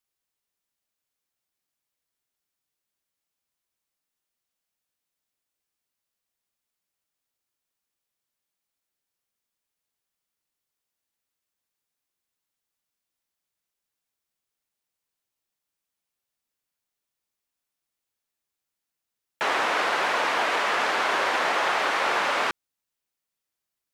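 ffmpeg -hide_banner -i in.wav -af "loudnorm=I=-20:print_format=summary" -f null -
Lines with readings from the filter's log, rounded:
Input Integrated:    -23.8 LUFS
Input True Peak:     -11.6 dBTP
Input LRA:             2.4 LU
Input Threshold:     -34.0 LUFS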